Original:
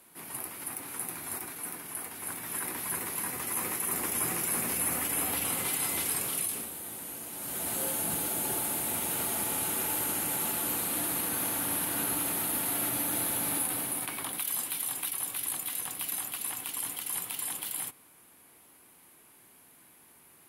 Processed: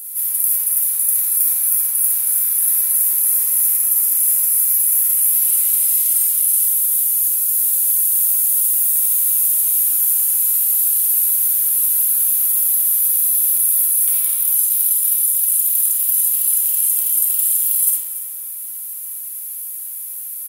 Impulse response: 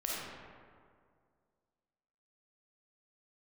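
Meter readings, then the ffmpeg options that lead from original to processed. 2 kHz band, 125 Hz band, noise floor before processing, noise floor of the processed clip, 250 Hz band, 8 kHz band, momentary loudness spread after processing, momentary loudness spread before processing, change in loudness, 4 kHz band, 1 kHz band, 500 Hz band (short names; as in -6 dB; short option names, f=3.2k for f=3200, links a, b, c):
n/a, under -20 dB, -58 dBFS, -29 dBFS, under -15 dB, +16.0 dB, 12 LU, 8 LU, +17.5 dB, +1.0 dB, under -10 dB, under -10 dB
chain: -filter_complex "[0:a]aemphasis=mode=production:type=riaa,areverse,acompressor=threshold=-26dB:ratio=10,areverse,aecho=1:1:286:0.2[a];[1:a]atrim=start_sample=2205[b];[a][b]afir=irnorm=-1:irlink=0,crystalizer=i=4.5:c=0,volume=-5dB"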